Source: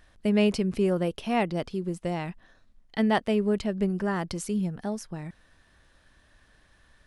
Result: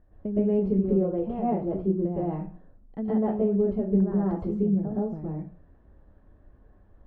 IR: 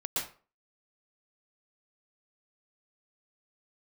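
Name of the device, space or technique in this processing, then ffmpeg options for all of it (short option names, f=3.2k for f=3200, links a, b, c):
television next door: -filter_complex "[0:a]acompressor=threshold=-28dB:ratio=4,lowpass=550[a];[1:a]atrim=start_sample=2205[b];[a][b]afir=irnorm=-1:irlink=0,volume=2dB"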